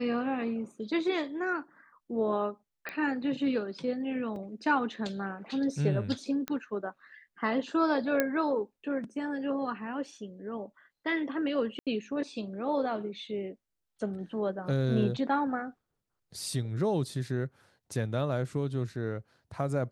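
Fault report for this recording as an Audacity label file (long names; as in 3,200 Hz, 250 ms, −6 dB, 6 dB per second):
2.890000	2.890000	click −22 dBFS
4.360000	4.360000	drop-out 2.4 ms
6.480000	6.480000	click −18 dBFS
8.200000	8.200000	click −12 dBFS
11.790000	11.870000	drop-out 77 ms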